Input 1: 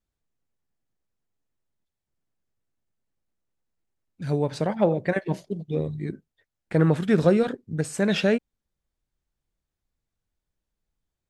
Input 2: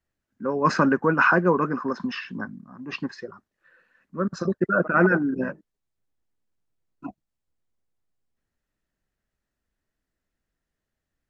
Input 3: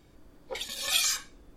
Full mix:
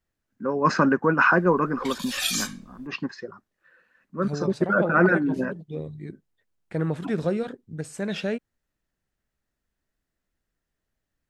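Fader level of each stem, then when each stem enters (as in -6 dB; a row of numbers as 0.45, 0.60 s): -6.5, 0.0, -0.5 dB; 0.00, 0.00, 1.30 s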